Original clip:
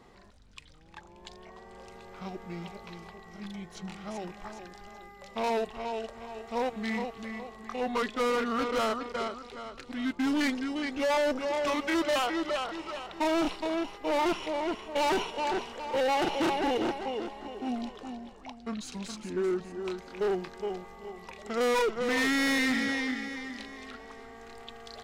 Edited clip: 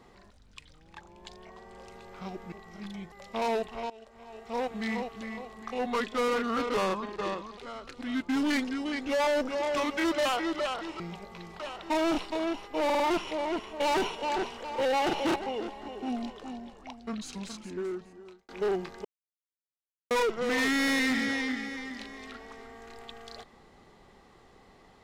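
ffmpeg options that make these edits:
-filter_complex "[0:a]asplit=15[s0][s1][s2][s3][s4][s5][s6][s7][s8][s9][s10][s11][s12][s13][s14];[s0]atrim=end=2.522[s15];[s1]atrim=start=3.118:end=3.722[s16];[s2]atrim=start=5.138:end=5.92,asetpts=PTS-STARTPTS,afade=t=out:st=0.778:d=0.004:c=hsin:silence=0.105925[s17];[s3]atrim=start=5.92:end=8.764,asetpts=PTS-STARTPTS,afade=t=in:d=0.84:silence=0.105925[s18];[s4]atrim=start=8.76:end=9.48,asetpts=PTS-STARTPTS,asetrate=37926,aresample=44100[s19];[s5]atrim=start=9.476:end=12.902[s20];[s6]atrim=start=2.518:end=3.122[s21];[s7]atrim=start=12.898:end=14.202[s22];[s8]atrim=start=14.148:end=14.202[s23];[s9]atrim=start=14.148:end=14.202[s24];[s10]atrim=start=14.148:end=16.512[s25];[s11]atrim=start=16.948:end=20.08,asetpts=PTS-STARTPTS,afade=t=out:st=1.992:d=1.14[s26];[s12]atrim=start=20.08:end=20.64,asetpts=PTS-STARTPTS,afade=t=in:d=0.004:c=hsin,afade=t=out:st=0.556:d=0.004:c=hsin[s27];[s13]atrim=start=20.64:end=21.7,asetpts=PTS-STARTPTS,volume=0[s28];[s14]atrim=start=21.7,asetpts=PTS-STARTPTS,afade=t=in:d=0.004:c=hsin[s29];[s15][s16]acrossfade=d=0.004:c1=hsin:c2=hsin[s30];[s17][s18]concat=n=2:v=0:a=1[s31];[s30][s31]acrossfade=d=0.004:c1=hsin:c2=hsin[s32];[s32][s19]acrossfade=d=0.004:c1=hsin:c2=hsin[s33];[s33][s20]acrossfade=d=0.004:c1=hsin:c2=hsin[s34];[s34][s21]acrossfade=d=0.004:c1=hsin:c2=hsin[s35];[s35][s22]acrossfade=d=0.004:c1=hsin:c2=hsin[s36];[s36][s23]acrossfade=d=0.004:c1=hsin:c2=hsin[s37];[s37][s24]acrossfade=d=0.004:c1=hsin:c2=hsin[s38];[s38][s25]acrossfade=d=0.004:c1=hsin:c2=hsin[s39];[s26][s27][s28][s29]concat=n=4:v=0:a=1[s40];[s39][s40]acrossfade=d=0.004:c1=hsin:c2=hsin"

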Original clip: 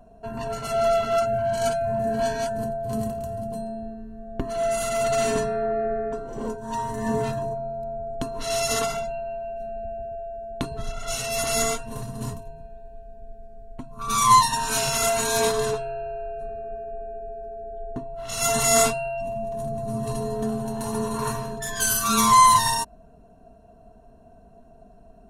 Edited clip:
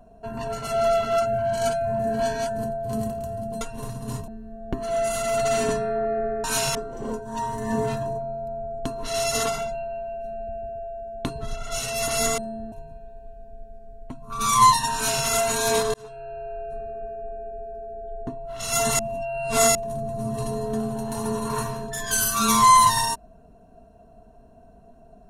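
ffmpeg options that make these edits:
-filter_complex "[0:a]asplit=10[s0][s1][s2][s3][s4][s5][s6][s7][s8][s9];[s0]atrim=end=3.612[s10];[s1]atrim=start=11.738:end=12.412[s11];[s2]atrim=start=3.948:end=6.112[s12];[s3]atrim=start=14.638:end=14.952[s13];[s4]atrim=start=6.108:end=11.742[s14];[s5]atrim=start=3.608:end=3.952[s15];[s6]atrim=start=12.408:end=15.63,asetpts=PTS-STARTPTS,afade=t=out:st=3.218:d=0.004:c=hsin[s16];[s7]atrim=start=15.63:end=18.682,asetpts=PTS-STARTPTS,afade=t=in:d=0.88:c=qsin[s17];[s8]atrim=start=18.678:end=19.442,asetpts=PTS-STARTPTS,areverse[s18];[s9]atrim=start=19.438[s19];[s10][s11]acrossfade=d=0.004:c1=hsin:c2=hsin[s20];[s20][s12]acrossfade=d=0.004:c1=hsin:c2=hsin[s21];[s21][s13]acrossfade=d=0.004:c1=hsin:c2=hsin[s22];[s22][s14]acrossfade=d=0.004:c1=hsin:c2=hsin[s23];[s23][s15]acrossfade=d=0.004:c1=hsin:c2=hsin[s24];[s16][s17]concat=n=2:v=0:a=1[s25];[s24][s25]acrossfade=d=0.004:c1=hsin:c2=hsin[s26];[s26][s18]acrossfade=d=0.004:c1=hsin:c2=hsin[s27];[s27][s19]acrossfade=d=0.004:c1=hsin:c2=hsin"

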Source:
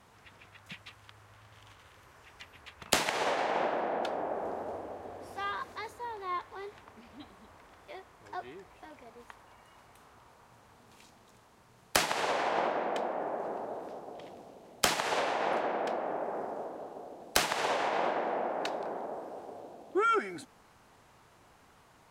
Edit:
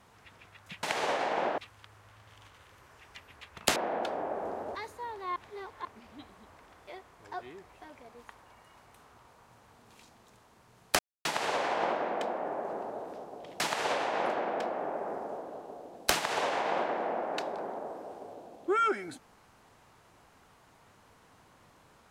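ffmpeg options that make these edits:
-filter_complex "[0:a]asplit=9[s0][s1][s2][s3][s4][s5][s6][s7][s8];[s0]atrim=end=0.832[s9];[s1]atrim=start=3.008:end=3.762[s10];[s2]atrim=start=0.828:end=3.012[s11];[s3]atrim=start=3.758:end=4.752[s12];[s4]atrim=start=5.758:end=6.372[s13];[s5]atrim=start=6.368:end=6.862,asetpts=PTS-STARTPTS,areverse[s14];[s6]atrim=start=6.858:end=12,asetpts=PTS-STARTPTS,afade=t=out:st=5.138:d=0.004:c=hsin,apad=pad_dur=0.26[s15];[s7]atrim=start=12:end=14.352,asetpts=PTS-STARTPTS,afade=t=in:d=0.004:c=hsin[s16];[s8]atrim=start=14.868[s17];[s9][s10]acrossfade=d=0.004:c1=hsin:c2=hsin[s18];[s18][s11]acrossfade=d=0.004:c1=hsin:c2=hsin[s19];[s19][s12]acrossfade=d=0.004:c1=hsin:c2=hsin[s20];[s20][s13]acrossfade=d=0.004:c1=hsin:c2=hsin[s21];[s21][s14]acrossfade=d=0.004:c1=hsin:c2=hsin[s22];[s15][s16]concat=n=2:v=0:a=1[s23];[s22][s23]acrossfade=d=0.004:c1=hsin:c2=hsin[s24];[s24][s17]acrossfade=d=0.004:c1=hsin:c2=hsin"

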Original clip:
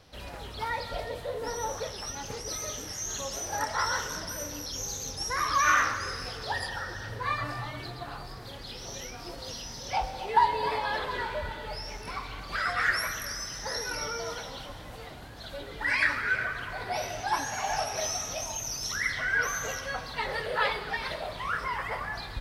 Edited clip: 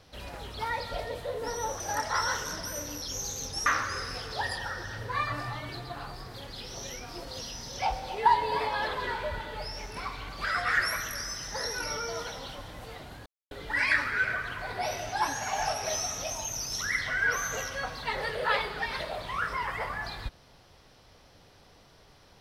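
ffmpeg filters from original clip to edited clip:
-filter_complex "[0:a]asplit=5[s0][s1][s2][s3][s4];[s0]atrim=end=1.802[s5];[s1]atrim=start=3.438:end=5.302[s6];[s2]atrim=start=5.768:end=15.37,asetpts=PTS-STARTPTS,afade=t=out:st=9.598:d=0.004:c=hsin[s7];[s3]atrim=start=15.37:end=15.62,asetpts=PTS-STARTPTS,volume=0[s8];[s4]atrim=start=15.62,asetpts=PTS-STARTPTS,afade=t=in:d=0.004:c=hsin[s9];[s5][s6]acrossfade=d=0.004:c1=hsin:c2=hsin[s10];[s7][s8][s9]concat=n=3:v=0:a=1[s11];[s10][s11]acrossfade=d=0.004:c1=hsin:c2=hsin"

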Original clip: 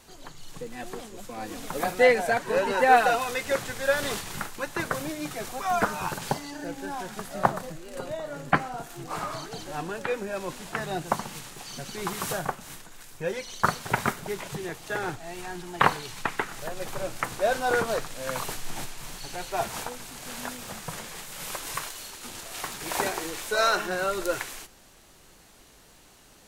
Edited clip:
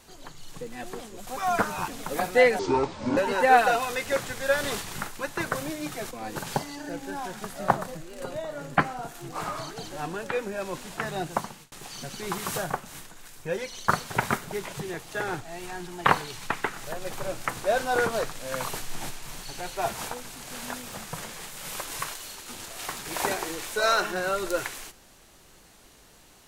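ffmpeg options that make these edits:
-filter_complex "[0:a]asplit=8[s0][s1][s2][s3][s4][s5][s6][s7];[s0]atrim=end=1.272[s8];[s1]atrim=start=5.498:end=6.112[s9];[s2]atrim=start=1.518:end=2.234[s10];[s3]atrim=start=2.23:end=2.56,asetpts=PTS-STARTPTS,asetrate=25137,aresample=44100[s11];[s4]atrim=start=2.556:end=5.502[s12];[s5]atrim=start=1.268:end=1.522[s13];[s6]atrim=start=6.108:end=11.47,asetpts=PTS-STARTPTS,afade=t=out:st=4.802:d=0.56:c=qsin[s14];[s7]atrim=start=11.47,asetpts=PTS-STARTPTS,afade=t=in:d=0.004:c=hsin[s15];[s8][s9]acrossfade=d=0.004:c1=hsin:c2=hsin[s16];[s16][s10]acrossfade=d=0.004:c1=hsin:c2=hsin[s17];[s17][s11]acrossfade=d=0.004:c1=hsin:c2=hsin[s18];[s18][s12]acrossfade=d=0.004:c1=hsin:c2=hsin[s19];[s19][s13]acrossfade=d=0.004:c1=hsin:c2=hsin[s20];[s14][s15]concat=n=2:v=0:a=1[s21];[s20][s21]acrossfade=d=0.004:c1=hsin:c2=hsin"

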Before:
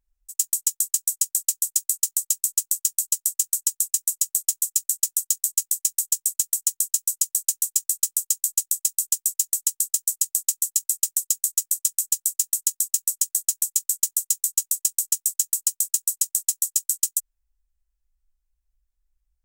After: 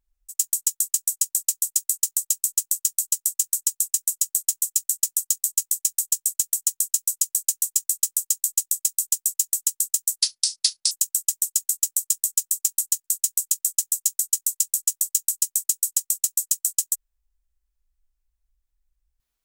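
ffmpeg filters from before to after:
-filter_complex "[0:a]asplit=4[s0][s1][s2][s3];[s0]atrim=end=10.194[s4];[s1]atrim=start=10.19:end=10.66,asetpts=PTS-STARTPTS,asetrate=28665,aresample=44100[s5];[s2]atrim=start=10.656:end=12.792[s6];[s3]atrim=start=13.288[s7];[s4][s5]acrossfade=d=0.004:c1=hsin:c2=hsin[s8];[s8][s6]acrossfade=d=0.004:c1=hsin:c2=hsin[s9];[s9][s7]acrossfade=d=0.004:c1=hsin:c2=hsin"

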